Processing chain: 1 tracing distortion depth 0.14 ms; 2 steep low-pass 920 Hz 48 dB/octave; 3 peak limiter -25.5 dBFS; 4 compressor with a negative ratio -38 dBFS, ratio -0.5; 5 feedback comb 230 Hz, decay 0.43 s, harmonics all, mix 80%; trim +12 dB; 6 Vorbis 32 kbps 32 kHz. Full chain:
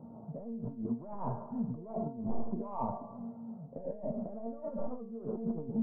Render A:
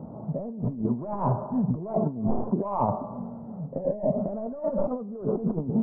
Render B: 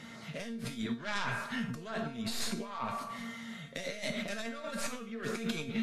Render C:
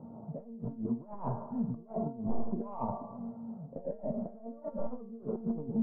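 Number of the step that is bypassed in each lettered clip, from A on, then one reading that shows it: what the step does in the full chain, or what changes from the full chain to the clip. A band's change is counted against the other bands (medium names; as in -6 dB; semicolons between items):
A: 5, 250 Hz band -2.5 dB; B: 2, 1 kHz band +3.0 dB; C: 3, 1 kHz band -1.5 dB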